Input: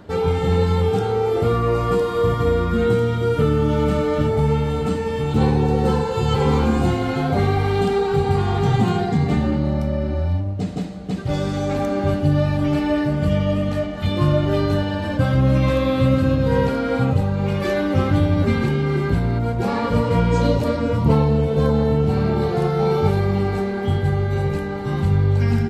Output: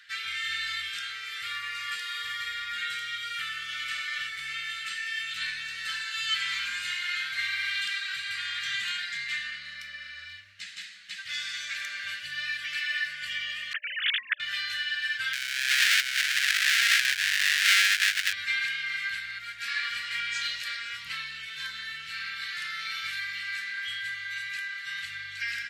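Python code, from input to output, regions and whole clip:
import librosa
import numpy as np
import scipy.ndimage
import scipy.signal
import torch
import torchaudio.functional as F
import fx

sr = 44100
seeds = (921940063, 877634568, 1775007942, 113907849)

y = fx.chain(x, sr, fx.sine_speech(),
    fx.notch(hz=800.0, q=20.0),
    fx.over_compress(threshold_db=-22.0, ratio=-0.5), at=(13.73, 14.4))
y = fx.chain(y, sr, fx.sample_sort(block=64),
    fx.over_compress(threshold_db=-19.0, ratio=-0.5),
    fx.doppler_dist(depth_ms=0.81), at=(15.33, 18.33))
y = scipy.signal.sosfilt(scipy.signal.ellip(4, 1.0, 50, 1700.0, 'highpass', fs=sr, output='sos'), y)
y = fx.high_shelf(y, sr, hz=6000.0, db=-11.5)
y = F.gain(torch.from_numpy(y), 7.5).numpy()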